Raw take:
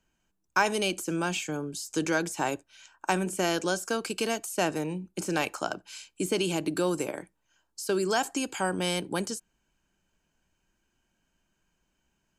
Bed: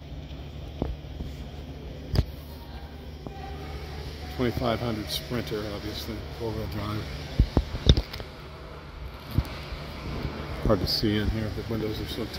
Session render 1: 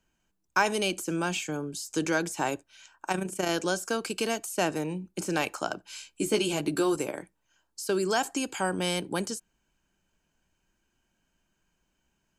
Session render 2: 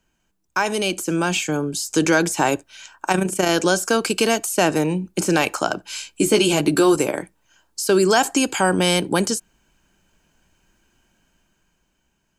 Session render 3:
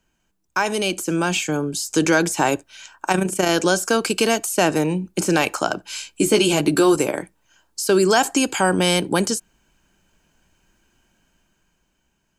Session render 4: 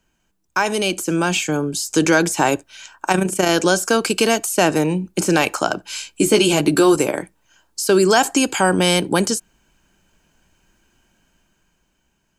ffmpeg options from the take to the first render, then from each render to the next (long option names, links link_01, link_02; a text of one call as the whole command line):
ffmpeg -i in.wav -filter_complex "[0:a]asettb=1/sr,asplit=3[link_01][link_02][link_03];[link_01]atrim=end=3.084[link_04];[link_02]atrim=start=3.08:end=3.49,asetpts=PTS-STARTPTS,afade=type=in:duration=0.004:curve=qsin,afade=type=out:start_time=0.406:duration=0.004:curve=qsin,tremolo=f=28:d=0.621[link_05];[link_03]atrim=start=3.486[link_06];[link_04][link_05]acrossfade=duration=0.004:curve1=hsin:curve2=qsin[link_07];[link_07][link_06]acrossfade=duration=0.004:curve1=qsin:curve2=hsin,asettb=1/sr,asplit=3[link_08][link_09][link_10];[link_08]atrim=end=5.884[link_11];[link_09]atrim=start=5.88:end=6.96,asetpts=PTS-STARTPTS,afade=type=in:duration=0.004:curve=qsin,afade=type=out:start_time=1.076:duration=0.004:curve=qsin,asplit=2[link_12][link_13];[link_13]adelay=14,volume=-4.5dB[link_14];[link_12][link_14]amix=inputs=2:normalize=0,atrim=end_sample=47628[link_15];[link_10]atrim=start=6.956[link_16];[link_11][link_15]acrossfade=duration=0.004:curve1=hsin:curve2=qsin[link_17];[link_17][link_16]acrossfade=duration=0.004:curve1=qsin:curve2=hsin" out.wav
ffmpeg -i in.wav -filter_complex "[0:a]asplit=2[link_01][link_02];[link_02]alimiter=limit=-20dB:level=0:latency=1,volume=-1dB[link_03];[link_01][link_03]amix=inputs=2:normalize=0,dynaudnorm=framelen=170:gausssize=13:maxgain=7dB" out.wav
ffmpeg -i in.wav -af anull out.wav
ffmpeg -i in.wav -af "volume=2dB" out.wav